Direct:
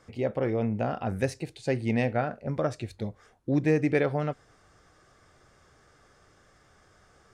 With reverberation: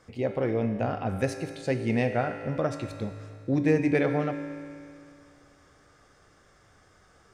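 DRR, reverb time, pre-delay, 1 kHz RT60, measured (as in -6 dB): 6.5 dB, 2.4 s, 4 ms, 2.4 s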